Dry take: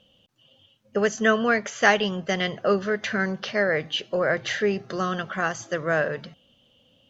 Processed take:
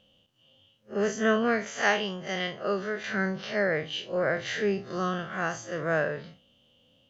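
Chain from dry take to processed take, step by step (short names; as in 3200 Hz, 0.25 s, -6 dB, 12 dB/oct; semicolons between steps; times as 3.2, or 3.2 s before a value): time blur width 86 ms; 1.81–3.14 low shelf 360 Hz -7 dB; gain -1.5 dB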